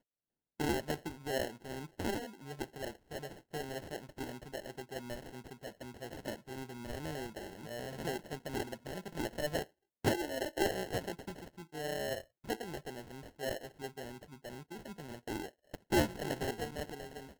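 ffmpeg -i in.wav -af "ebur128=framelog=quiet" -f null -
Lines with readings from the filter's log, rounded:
Integrated loudness:
  I:         -40.2 LUFS
  Threshold: -50.3 LUFS
Loudness range:
  LRA:         7.2 LU
  Threshold: -60.8 LUFS
  LRA low:   -44.9 LUFS
  LRA high:  -37.8 LUFS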